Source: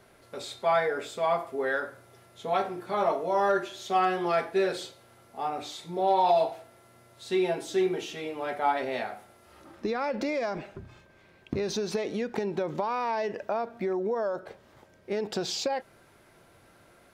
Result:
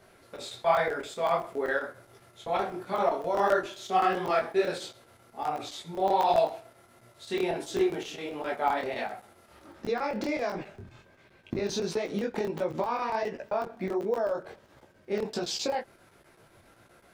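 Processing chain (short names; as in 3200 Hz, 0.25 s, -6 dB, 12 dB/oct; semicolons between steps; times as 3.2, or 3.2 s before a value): crackling interface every 0.13 s, samples 1024, zero, from 0.36; detuned doubles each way 49 cents; gain +4 dB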